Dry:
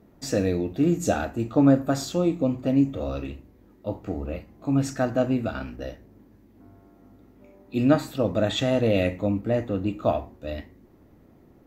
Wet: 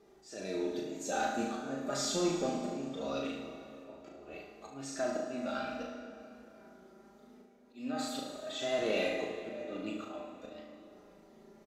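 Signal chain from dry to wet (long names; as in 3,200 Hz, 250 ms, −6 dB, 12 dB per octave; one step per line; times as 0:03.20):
bass and treble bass −14 dB, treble +13 dB
comb filter 5 ms, depth 55%
brickwall limiter −18 dBFS, peak gain reduction 10.5 dB
volume swells 525 ms
flanger 0.22 Hz, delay 2.4 ms, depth 2.9 ms, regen +32%
asymmetric clip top −28 dBFS
high-frequency loss of the air 77 metres
flutter between parallel walls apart 6.3 metres, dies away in 0.55 s
dense smooth reverb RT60 3.3 s, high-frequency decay 0.65×, DRR 5 dB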